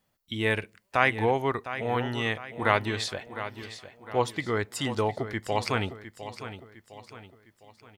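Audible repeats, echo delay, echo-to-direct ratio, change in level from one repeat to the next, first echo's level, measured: 4, 707 ms, -11.0 dB, -7.5 dB, -12.0 dB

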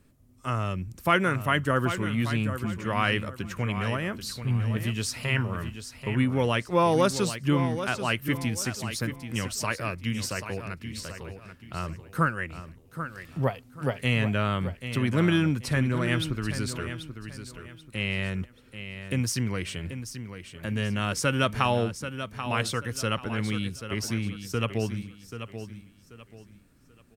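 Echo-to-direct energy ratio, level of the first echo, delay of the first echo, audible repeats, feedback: -9.5 dB, -10.0 dB, 785 ms, 3, 30%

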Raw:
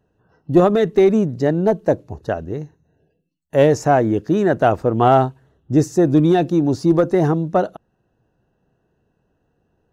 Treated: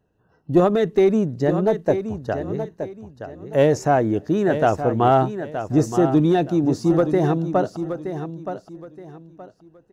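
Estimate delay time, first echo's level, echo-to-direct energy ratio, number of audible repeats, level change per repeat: 922 ms, -9.5 dB, -9.0 dB, 3, -11.5 dB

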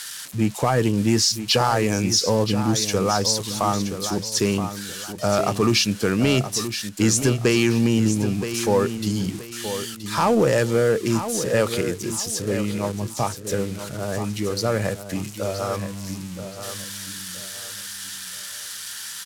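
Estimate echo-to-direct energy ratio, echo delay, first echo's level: -9.5 dB, 974 ms, -10.0 dB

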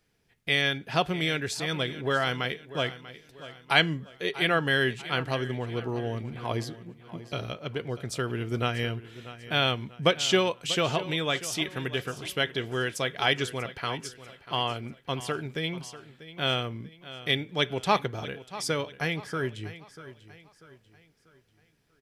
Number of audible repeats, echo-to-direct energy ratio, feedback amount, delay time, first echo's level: 3, -14.5 dB, 40%, 641 ms, -15.5 dB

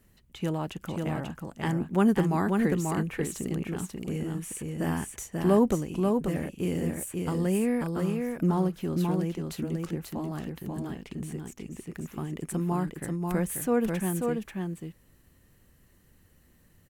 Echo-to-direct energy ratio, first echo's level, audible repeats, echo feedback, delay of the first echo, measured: -4.0 dB, -4.0 dB, 1, no regular repeats, 538 ms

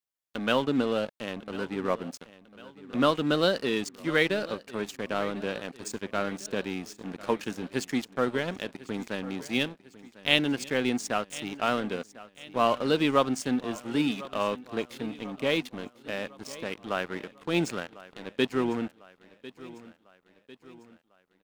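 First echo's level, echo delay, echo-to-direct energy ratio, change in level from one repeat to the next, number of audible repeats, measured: -18.0 dB, 1049 ms, -16.5 dB, -6.0 dB, 3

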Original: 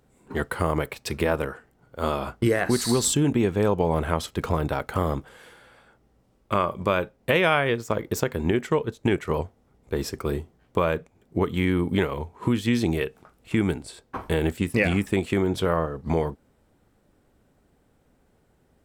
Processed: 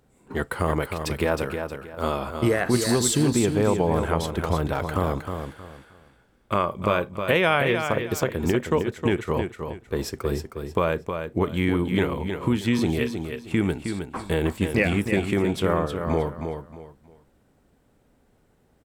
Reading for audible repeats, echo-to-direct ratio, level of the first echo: 3, -6.5 dB, -7.0 dB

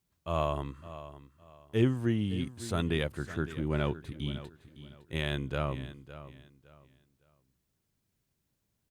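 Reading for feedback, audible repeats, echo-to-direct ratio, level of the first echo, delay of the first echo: 27%, 2, -14.0 dB, -14.5 dB, 560 ms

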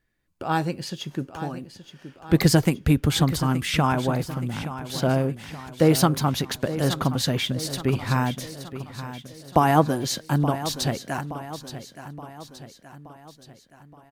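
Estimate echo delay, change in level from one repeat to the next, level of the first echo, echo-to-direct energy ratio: 873 ms, -5.5 dB, -12.5 dB, -11.0 dB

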